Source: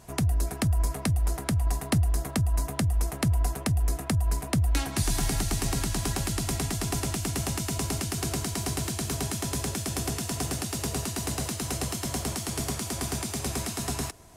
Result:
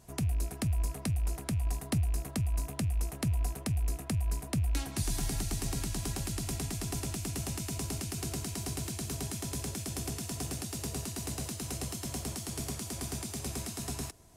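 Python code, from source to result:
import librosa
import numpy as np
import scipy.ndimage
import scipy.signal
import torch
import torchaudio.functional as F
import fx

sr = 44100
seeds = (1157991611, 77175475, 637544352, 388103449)

y = fx.rattle_buzz(x, sr, strikes_db=-32.0, level_db=-35.0)
y = fx.peak_eq(y, sr, hz=1300.0, db=-4.5, octaves=2.7)
y = y * librosa.db_to_amplitude(-5.5)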